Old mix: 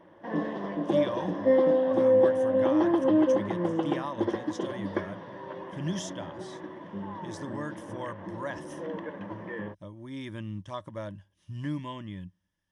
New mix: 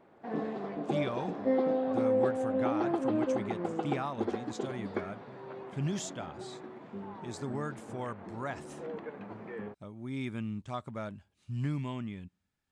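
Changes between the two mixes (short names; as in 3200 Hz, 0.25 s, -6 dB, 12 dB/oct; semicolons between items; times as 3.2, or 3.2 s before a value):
background -4.0 dB; master: remove ripple EQ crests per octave 1.2, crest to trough 11 dB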